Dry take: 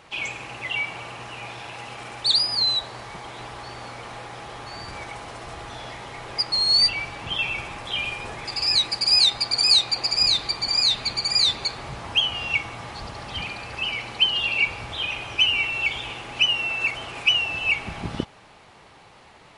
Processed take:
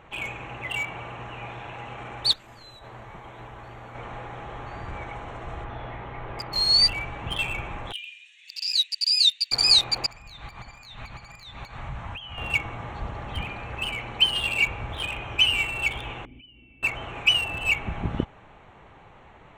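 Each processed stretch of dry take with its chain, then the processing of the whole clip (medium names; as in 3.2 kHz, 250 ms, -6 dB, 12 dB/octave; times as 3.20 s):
2.33–3.95 s: CVSD coder 64 kbps + compression, threshold -30 dBFS + feedback comb 110 Hz, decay 0.22 s
5.64–6.56 s: Gaussian low-pass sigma 1.9 samples + doubling 50 ms -13.5 dB
7.92–9.52 s: steep high-pass 2.7 kHz + treble shelf 5.9 kHz -4 dB + comb 1.1 ms, depth 41%
10.06–12.38 s: peaking EQ 390 Hz -11 dB 1.2 oct + compression 5:1, threshold -32 dBFS
16.25–16.83 s: peaking EQ 63 Hz +13 dB 0.82 oct + compression 5:1, threshold -32 dBFS + cascade formant filter i
whole clip: local Wiener filter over 9 samples; bass shelf 72 Hz +11.5 dB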